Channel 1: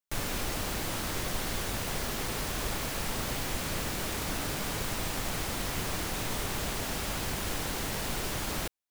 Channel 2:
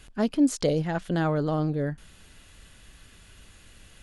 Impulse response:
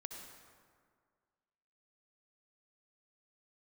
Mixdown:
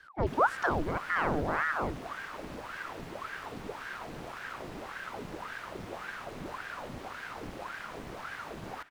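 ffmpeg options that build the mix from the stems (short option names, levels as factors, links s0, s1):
-filter_complex "[0:a]adelay=150,volume=0.501,asplit=2[s0][s1];[s1]volume=0.501[s2];[1:a]volume=0.75,asplit=2[s3][s4];[s4]volume=0.188[s5];[2:a]atrim=start_sample=2205[s6];[s2][s5]amix=inputs=2:normalize=0[s7];[s7][s6]afir=irnorm=-1:irlink=0[s8];[s0][s3][s8]amix=inputs=3:normalize=0,lowpass=f=1300:p=1,aeval=exprs='val(0)*sin(2*PI*870*n/s+870*0.85/1.8*sin(2*PI*1.8*n/s))':c=same"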